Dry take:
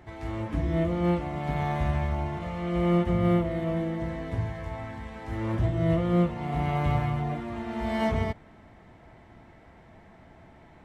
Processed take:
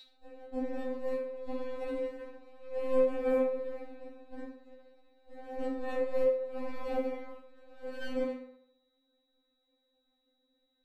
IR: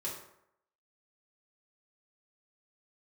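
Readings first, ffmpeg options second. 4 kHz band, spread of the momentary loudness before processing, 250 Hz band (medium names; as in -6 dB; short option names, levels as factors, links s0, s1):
under -10 dB, 10 LU, -11.5 dB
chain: -filter_complex "[0:a]aeval=exprs='0.211*(cos(1*acos(clip(val(0)/0.211,-1,1)))-cos(1*PI/2))+0.0668*(cos(3*acos(clip(val(0)/0.211,-1,1)))-cos(3*PI/2))+0.00168*(cos(5*acos(clip(val(0)/0.211,-1,1)))-cos(5*PI/2))+0.00299*(cos(6*acos(clip(val(0)/0.211,-1,1)))-cos(6*PI/2))+0.00376*(cos(7*acos(clip(val(0)/0.211,-1,1)))-cos(7*PI/2))':c=same,lowshelf=f=730:t=q:w=1.5:g=9.5,aeval=exprs='val(0)+0.0251*sin(2*PI*3800*n/s)':c=same[s0];[1:a]atrim=start_sample=2205[s1];[s0][s1]afir=irnorm=-1:irlink=0,afftfilt=real='re*3.46*eq(mod(b,12),0)':imag='im*3.46*eq(mod(b,12),0)':win_size=2048:overlap=0.75"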